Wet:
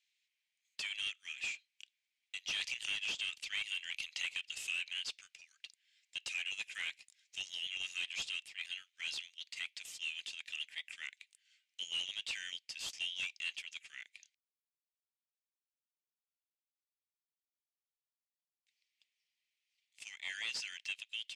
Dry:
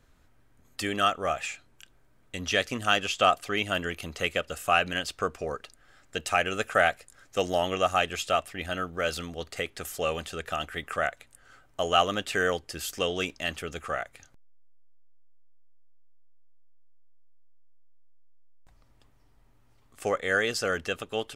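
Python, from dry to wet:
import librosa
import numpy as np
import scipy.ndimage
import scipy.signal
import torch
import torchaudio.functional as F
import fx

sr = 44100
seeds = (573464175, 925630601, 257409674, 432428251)

y = scipy.signal.sosfilt(scipy.signal.butter(8, 2200.0, 'highpass', fs=sr, output='sos'), x)
y = fx.leveller(y, sr, passes=1)
y = 10.0 ** (-29.5 / 20.0) * np.tanh(y / 10.0 ** (-29.5 / 20.0))
y = fx.air_absorb(y, sr, metres=91.0)
y = fx.band_squash(y, sr, depth_pct=100, at=(2.61, 4.73))
y = F.gain(torch.from_numpy(y), -1.5).numpy()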